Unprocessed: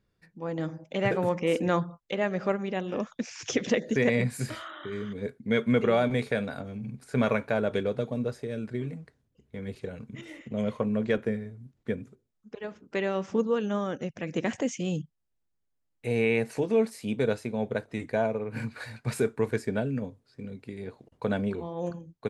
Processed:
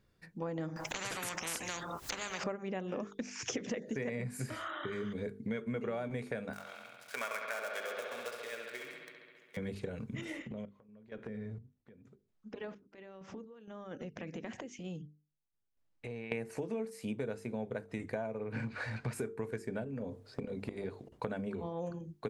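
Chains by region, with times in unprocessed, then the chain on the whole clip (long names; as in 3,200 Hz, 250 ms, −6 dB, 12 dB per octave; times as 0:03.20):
0:00.76–0:02.44: high-pass filter 100 Hz 6 dB per octave + upward compression, threshold −30 dBFS + every bin compressed towards the loudest bin 10 to 1
0:06.53–0:09.57: gap after every zero crossing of 0.088 ms + high-pass filter 1,200 Hz + bucket-brigade delay 68 ms, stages 2,048, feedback 80%, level −6.5 dB
0:10.42–0:16.32: downward compressor, threshold −41 dBFS + sample-and-hold tremolo 4.3 Hz, depth 95% + high-frequency loss of the air 81 metres
0:18.52–0:19.13: mu-law and A-law mismatch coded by mu + low-pass filter 4,800 Hz
0:19.84–0:20.85: parametric band 550 Hz +7.5 dB 1.7 octaves + transient designer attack +11 dB, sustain +3 dB + downward compressor 4 to 1, threshold −33 dBFS
whole clip: mains-hum notches 50/100/150/200/250/300/350/400/450 Hz; dynamic equaliser 3,800 Hz, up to −7 dB, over −54 dBFS, Q 1.8; downward compressor 6 to 1, threshold −39 dBFS; level +3.5 dB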